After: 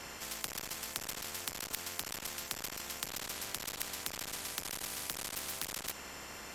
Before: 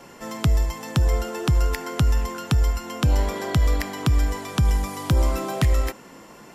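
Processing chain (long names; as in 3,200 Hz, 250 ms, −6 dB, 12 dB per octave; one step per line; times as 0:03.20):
sub-octave generator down 2 octaves, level +1 dB
tube saturation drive 21 dB, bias 0.75
echo ahead of the sound 32 ms −23 dB
every bin compressed towards the loudest bin 10 to 1
level +2 dB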